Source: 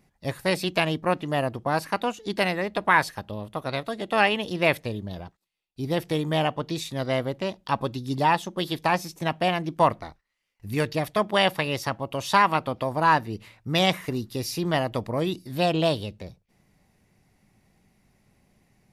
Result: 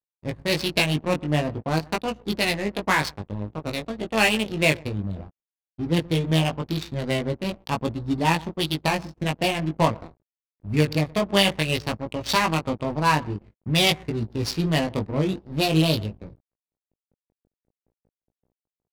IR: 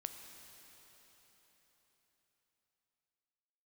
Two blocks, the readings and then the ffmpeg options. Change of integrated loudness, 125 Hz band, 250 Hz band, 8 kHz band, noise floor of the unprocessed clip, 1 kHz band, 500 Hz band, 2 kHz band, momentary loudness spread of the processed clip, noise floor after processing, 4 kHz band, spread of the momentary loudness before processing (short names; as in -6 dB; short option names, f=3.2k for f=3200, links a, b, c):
+1.5 dB, +5.0 dB, +3.5 dB, +5.5 dB, -72 dBFS, -3.0 dB, -0.5 dB, +0.5 dB, 10 LU, under -85 dBFS, +4.0 dB, 11 LU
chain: -filter_complex "[0:a]adynamicequalizer=threshold=0.00398:dfrequency=4300:dqfactor=2.8:tfrequency=4300:tqfactor=2.8:attack=5:release=100:ratio=0.375:range=4:mode=boostabove:tftype=bell,aeval=exprs='val(0)+0.00224*(sin(2*PI*60*n/s)+sin(2*PI*2*60*n/s)/2+sin(2*PI*3*60*n/s)/3+sin(2*PI*4*60*n/s)/4+sin(2*PI*5*60*n/s)/5)':c=same,acrossover=split=410[a][b];[a]acontrast=85[c];[c][b]amix=inputs=2:normalize=0,tremolo=f=5.2:d=0.3,asoftclip=type=hard:threshold=-8.5dB,aexciter=amount=2.7:drive=3:freq=2.1k,lowshelf=f=150:g=4,asplit=2[d][e];[e]adelay=122,lowpass=f=3.1k:p=1,volume=-18.5dB,asplit=2[f][g];[g]adelay=122,lowpass=f=3.1k:p=1,volume=0.17[h];[d][f][h]amix=inputs=3:normalize=0,acrusher=bits=7:mix=0:aa=0.5,aeval=exprs='sgn(val(0))*max(abs(val(0))-0.0126,0)':c=same,flanger=delay=18:depth=2.3:speed=0.49,adynamicsmooth=sensitivity=4.5:basefreq=680,volume=1.5dB"